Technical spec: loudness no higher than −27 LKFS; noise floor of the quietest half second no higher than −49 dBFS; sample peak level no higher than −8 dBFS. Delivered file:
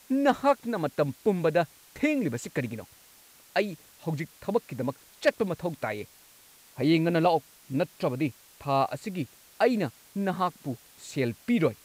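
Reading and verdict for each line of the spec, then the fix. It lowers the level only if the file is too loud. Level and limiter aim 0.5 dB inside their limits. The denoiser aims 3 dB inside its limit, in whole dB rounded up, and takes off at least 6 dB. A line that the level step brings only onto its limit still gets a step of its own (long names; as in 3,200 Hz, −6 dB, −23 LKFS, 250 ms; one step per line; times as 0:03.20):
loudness −29.0 LKFS: in spec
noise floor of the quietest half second −56 dBFS: in spec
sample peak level −12.0 dBFS: in spec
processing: no processing needed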